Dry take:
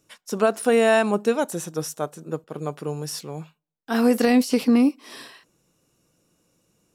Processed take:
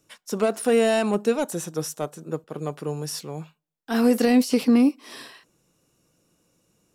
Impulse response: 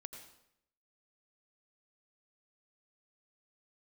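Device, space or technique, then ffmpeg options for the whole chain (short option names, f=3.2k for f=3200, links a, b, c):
one-band saturation: -filter_complex "[0:a]acrossover=split=560|2600[a][b][c];[b]asoftclip=type=tanh:threshold=-25dB[d];[a][d][c]amix=inputs=3:normalize=0"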